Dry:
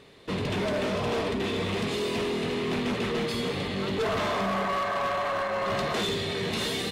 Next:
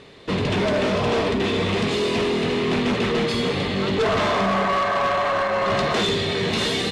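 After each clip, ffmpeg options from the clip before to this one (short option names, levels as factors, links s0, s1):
-af "lowpass=7800,volume=2.24"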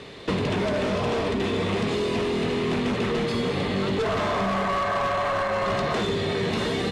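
-filter_complex "[0:a]acrossover=split=130|1900|7400[s0][s1][s2][s3];[s0]acompressor=threshold=0.01:ratio=4[s4];[s1]acompressor=threshold=0.0355:ratio=4[s5];[s2]acompressor=threshold=0.00708:ratio=4[s6];[s3]acompressor=threshold=0.00126:ratio=4[s7];[s4][s5][s6][s7]amix=inputs=4:normalize=0,volume=1.68"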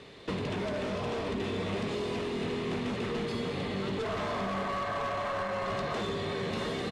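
-af "aecho=1:1:998:0.316,volume=0.376"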